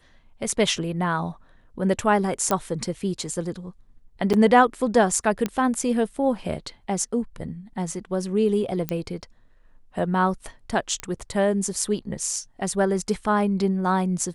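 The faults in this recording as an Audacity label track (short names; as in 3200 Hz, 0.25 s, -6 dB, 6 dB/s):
2.510000	2.510000	pop -8 dBFS
4.330000	4.340000	gap 7.5 ms
5.460000	5.460000	pop -11 dBFS
8.890000	8.890000	pop -10 dBFS
11.000000	11.000000	pop -14 dBFS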